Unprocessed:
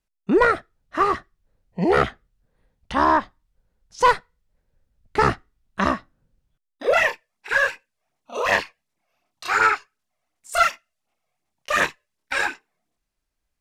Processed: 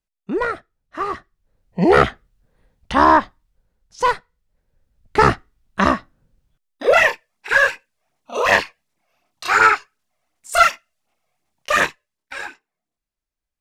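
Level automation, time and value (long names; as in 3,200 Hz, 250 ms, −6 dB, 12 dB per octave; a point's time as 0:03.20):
0:01.02 −5 dB
0:01.83 +5.5 dB
0:03.18 +5.5 dB
0:04.15 −2 dB
0:05.18 +5 dB
0:11.71 +5 dB
0:12.35 −7.5 dB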